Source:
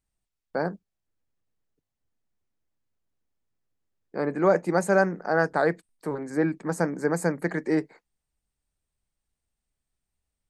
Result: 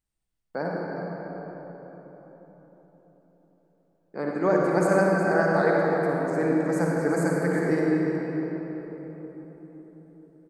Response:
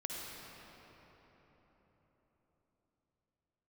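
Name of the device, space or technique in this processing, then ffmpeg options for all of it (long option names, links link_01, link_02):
cave: -filter_complex "[0:a]aecho=1:1:364:0.282[link_01];[1:a]atrim=start_sample=2205[link_02];[link_01][link_02]afir=irnorm=-1:irlink=0"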